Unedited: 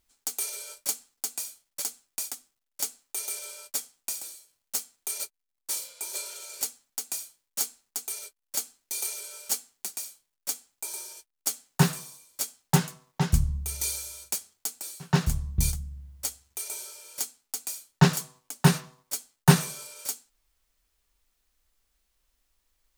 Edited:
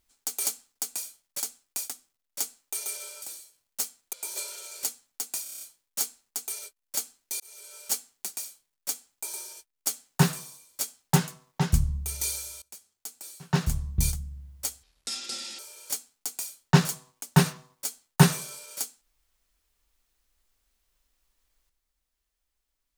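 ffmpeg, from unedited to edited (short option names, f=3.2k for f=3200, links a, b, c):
-filter_complex "[0:a]asplit=14[a][b][c][d][e][f][g][h][i][j][k][l][m][n];[a]atrim=end=0.452[o];[b]atrim=start=0.868:end=3.642[p];[c]atrim=start=4.168:end=5.082[q];[d]atrim=start=5.908:end=7.242[r];[e]atrim=start=7.208:end=7.242[s];[f]atrim=start=7.208:end=7.242[t];[g]atrim=start=7.208:end=7.242[u];[h]atrim=start=7.208:end=7.242[v];[i]atrim=start=7.208:end=7.242[w];[j]atrim=start=7.208:end=9,asetpts=PTS-STARTPTS,afade=t=out:st=1.788:d=0.004:c=hsin[x];[k]atrim=start=9:end=14.22,asetpts=PTS-STARTPTS,afade=t=in:d=0.51,afade=t=out:st=5.216:d=0.004:c=hsin:silence=0.0707946[y];[l]atrim=start=14.22:end=16.434,asetpts=PTS-STARTPTS,afade=t=in:d=1.17:silence=0.0707946[z];[m]atrim=start=16.43:end=16.87,asetpts=PTS-STARTPTS,asetrate=25578,aresample=44100,atrim=end_sample=33455,asetpts=PTS-STARTPTS[aa];[n]atrim=start=16.866[ab];[o][p]acrossfade=d=0.004:c1=hsin:c2=hsin[ac];[ac][q]acrossfade=d=0.004:c1=hsin:c2=hsin[ad];[ad][r]acrossfade=d=0.004:c1=hsin:c2=hsin[ae];[ae][s]acrossfade=d=0.004:c1=hsin:c2=hsin[af];[af][t]acrossfade=d=0.004:c1=hsin:c2=hsin[ag];[ag][u]acrossfade=d=0.004:c1=hsin:c2=hsin[ah];[ah][v]acrossfade=d=0.004:c1=hsin:c2=hsin[ai];[ai][w]acrossfade=d=0.004:c1=hsin:c2=hsin[aj];[x][y][z]concat=n=3:v=0:a=1[ak];[aj][ak]acrossfade=d=0.004:c1=hsin:c2=hsin[al];[al][aa]acrossfade=d=0.004:c1=hsin:c2=hsin[am];[am][ab]acrossfade=d=0.004:c1=hsin:c2=hsin"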